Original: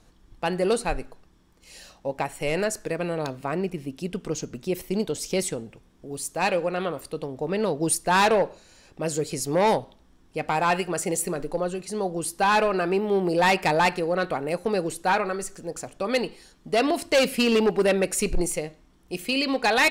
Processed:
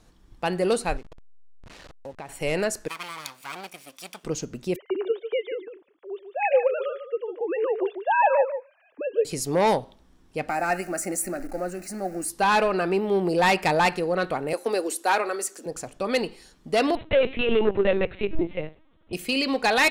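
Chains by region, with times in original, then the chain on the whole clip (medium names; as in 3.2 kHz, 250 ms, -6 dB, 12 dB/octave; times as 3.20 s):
0.97–2.29 s: send-on-delta sampling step -38.5 dBFS + compression 3:1, threshold -37 dBFS + distance through air 59 m
2.88–4.24 s: comb filter that takes the minimum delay 0.87 ms + high-pass 1.1 kHz 6 dB/octave + tilt EQ +2 dB/octave
4.76–9.25 s: formants replaced by sine waves + delay 147 ms -9.5 dB
10.49–12.30 s: jump at every zero crossing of -37.5 dBFS + static phaser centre 670 Hz, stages 8
14.53–15.66 s: steep high-pass 240 Hz 48 dB/octave + treble shelf 7.1 kHz +9 dB
16.95–19.13 s: hum notches 60/120/180/240 Hz + LPC vocoder at 8 kHz pitch kept
whole clip: none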